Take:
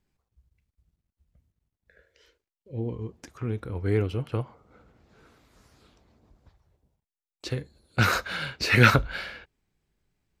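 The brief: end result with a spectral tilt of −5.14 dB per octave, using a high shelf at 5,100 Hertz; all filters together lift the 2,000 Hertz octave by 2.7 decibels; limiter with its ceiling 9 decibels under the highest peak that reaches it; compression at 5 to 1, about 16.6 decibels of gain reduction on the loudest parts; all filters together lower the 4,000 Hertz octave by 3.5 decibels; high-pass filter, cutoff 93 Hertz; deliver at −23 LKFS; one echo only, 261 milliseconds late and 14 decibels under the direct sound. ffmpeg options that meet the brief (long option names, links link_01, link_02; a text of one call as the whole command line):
ffmpeg -i in.wav -af "highpass=93,equalizer=frequency=2000:width_type=o:gain=5,equalizer=frequency=4000:width_type=o:gain=-8,highshelf=frequency=5100:gain=4,acompressor=threshold=-29dB:ratio=5,alimiter=level_in=1dB:limit=-24dB:level=0:latency=1,volume=-1dB,aecho=1:1:261:0.2,volume=14dB" out.wav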